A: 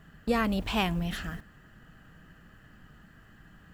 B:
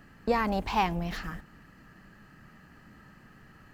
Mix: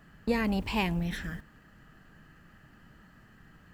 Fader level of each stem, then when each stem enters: -4.0 dB, -6.0 dB; 0.00 s, 0.00 s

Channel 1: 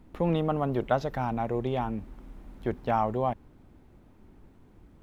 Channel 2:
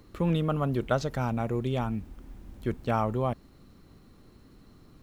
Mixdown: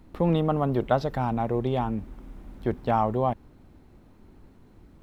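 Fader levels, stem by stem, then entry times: +2.0 dB, -11.5 dB; 0.00 s, 0.00 s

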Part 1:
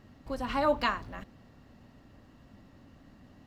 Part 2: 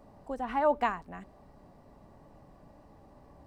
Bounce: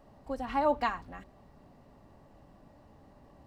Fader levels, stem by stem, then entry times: -8.5 dB, -2.5 dB; 0.00 s, 0.00 s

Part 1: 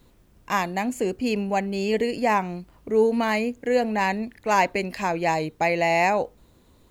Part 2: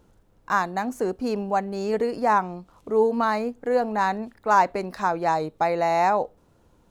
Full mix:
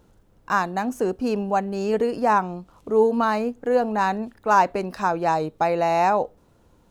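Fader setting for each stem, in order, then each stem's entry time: -15.0 dB, +1.5 dB; 0.00 s, 0.00 s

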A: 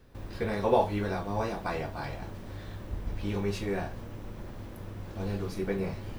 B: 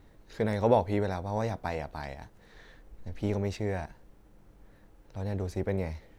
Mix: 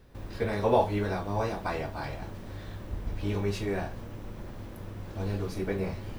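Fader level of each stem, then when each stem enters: +0.5 dB, -9.5 dB; 0.00 s, 0.00 s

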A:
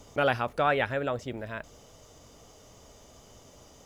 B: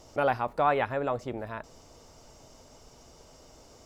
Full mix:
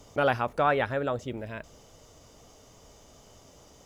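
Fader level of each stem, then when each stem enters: -1.5 dB, -8.5 dB; 0.00 s, 0.00 s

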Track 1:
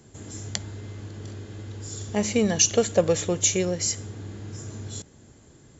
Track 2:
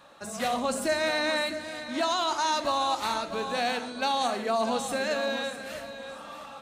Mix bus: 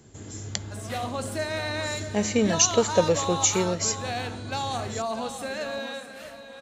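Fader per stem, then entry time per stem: -0.5 dB, -3.5 dB; 0.00 s, 0.50 s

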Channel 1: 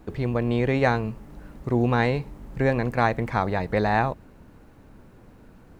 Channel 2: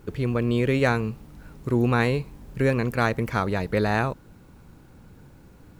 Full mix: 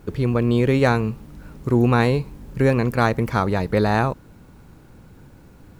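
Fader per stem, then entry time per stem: -7.0 dB, +2.5 dB; 0.00 s, 0.00 s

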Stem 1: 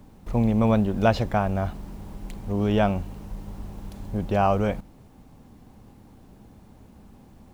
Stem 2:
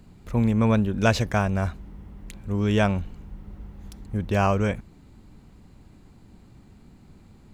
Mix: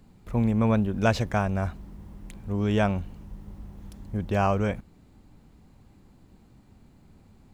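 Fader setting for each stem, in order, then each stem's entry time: -11.5 dB, -5.5 dB; 0.00 s, 0.00 s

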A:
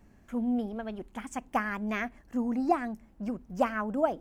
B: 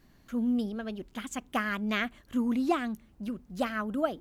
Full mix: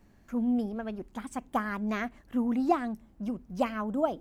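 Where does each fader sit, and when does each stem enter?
-2.0 dB, -8.5 dB; 0.00 s, 0.00 s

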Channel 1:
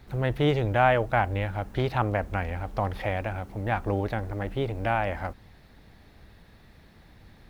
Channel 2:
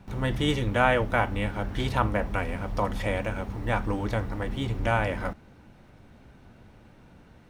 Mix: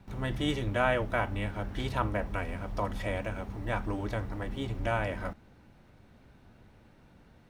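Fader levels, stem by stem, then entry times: -15.5 dB, -5.5 dB; 0.00 s, 0.00 s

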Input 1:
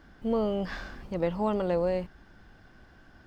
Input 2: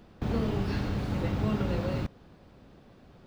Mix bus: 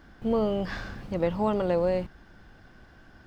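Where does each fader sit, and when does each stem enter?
+2.0 dB, -14.0 dB; 0.00 s, 0.00 s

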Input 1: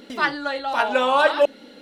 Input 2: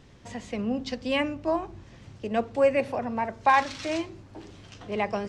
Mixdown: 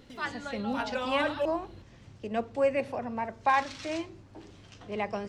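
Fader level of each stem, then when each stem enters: -13.0 dB, -4.5 dB; 0.00 s, 0.00 s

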